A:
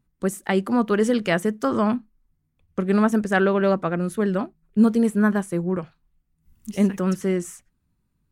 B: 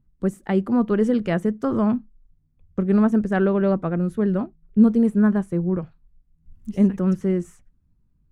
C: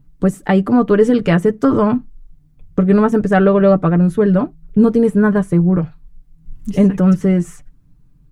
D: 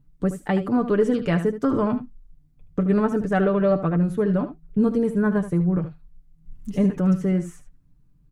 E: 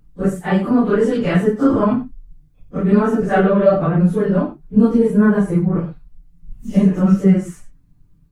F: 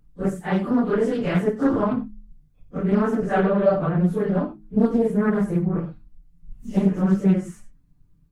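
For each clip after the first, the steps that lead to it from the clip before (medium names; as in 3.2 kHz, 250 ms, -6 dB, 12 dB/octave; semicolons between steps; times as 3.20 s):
tilt EQ -3 dB/octave; trim -4.5 dB
comb 6.8 ms, depth 58%; in parallel at +0.5 dB: compression, threshold -29 dBFS, peak gain reduction 14 dB; on the sum: trim +6 dB
delay 75 ms -11.5 dB; trim -8.5 dB
phase randomisation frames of 100 ms; trim +6 dB
de-hum 105.4 Hz, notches 3; loudspeaker Doppler distortion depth 0.4 ms; trim -5.5 dB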